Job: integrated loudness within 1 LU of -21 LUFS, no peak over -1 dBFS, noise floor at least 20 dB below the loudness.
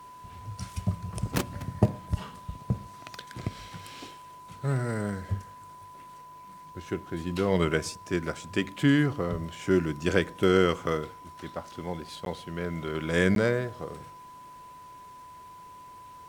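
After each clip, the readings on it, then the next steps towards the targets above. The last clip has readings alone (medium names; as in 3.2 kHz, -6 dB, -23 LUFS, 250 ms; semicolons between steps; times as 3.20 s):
dropouts 2; longest dropout 12 ms; steady tone 1 kHz; tone level -45 dBFS; loudness -29.5 LUFS; peak level -7.0 dBFS; loudness target -21.0 LUFS
-> interpolate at 12.25/13.35 s, 12 ms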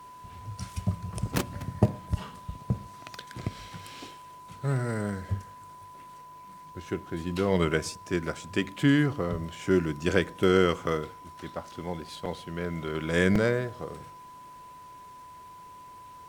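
dropouts 0; steady tone 1 kHz; tone level -45 dBFS
-> band-stop 1 kHz, Q 30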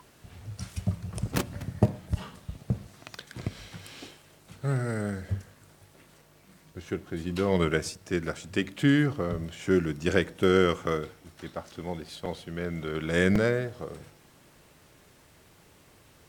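steady tone not found; loudness -29.5 LUFS; peak level -7.0 dBFS; loudness target -21.0 LUFS
-> trim +8.5 dB; peak limiter -1 dBFS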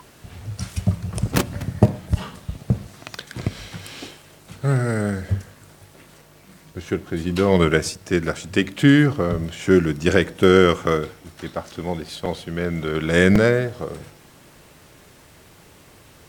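loudness -21.0 LUFS; peak level -1.0 dBFS; noise floor -50 dBFS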